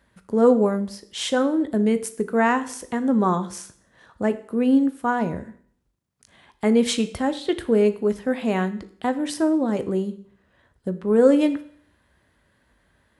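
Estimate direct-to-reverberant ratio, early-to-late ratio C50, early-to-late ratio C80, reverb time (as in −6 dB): 10.5 dB, 15.0 dB, 18.5 dB, 0.55 s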